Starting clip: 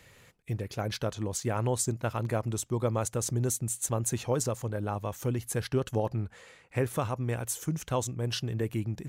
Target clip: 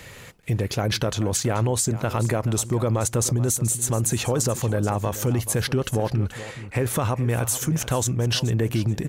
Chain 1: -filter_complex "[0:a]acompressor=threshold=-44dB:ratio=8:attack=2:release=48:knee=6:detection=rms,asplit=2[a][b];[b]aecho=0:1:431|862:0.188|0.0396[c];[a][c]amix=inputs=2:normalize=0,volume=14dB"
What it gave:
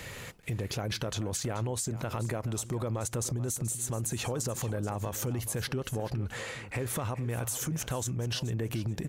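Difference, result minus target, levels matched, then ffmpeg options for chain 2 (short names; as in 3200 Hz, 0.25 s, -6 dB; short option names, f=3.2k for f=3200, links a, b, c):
compressor: peak gain reduction +10.5 dB
-filter_complex "[0:a]acompressor=threshold=-32dB:ratio=8:attack=2:release=48:knee=6:detection=rms,asplit=2[a][b];[b]aecho=0:1:431|862:0.188|0.0396[c];[a][c]amix=inputs=2:normalize=0,volume=14dB"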